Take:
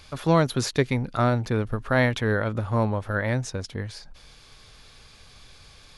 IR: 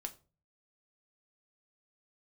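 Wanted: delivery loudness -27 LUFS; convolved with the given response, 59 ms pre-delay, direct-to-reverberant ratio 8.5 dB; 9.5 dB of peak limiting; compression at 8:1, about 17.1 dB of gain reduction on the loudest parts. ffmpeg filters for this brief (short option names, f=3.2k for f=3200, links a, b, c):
-filter_complex "[0:a]acompressor=threshold=-34dB:ratio=8,alimiter=level_in=7dB:limit=-24dB:level=0:latency=1,volume=-7dB,asplit=2[a][b];[1:a]atrim=start_sample=2205,adelay=59[c];[b][c]afir=irnorm=-1:irlink=0,volume=-6dB[d];[a][d]amix=inputs=2:normalize=0,volume=15dB"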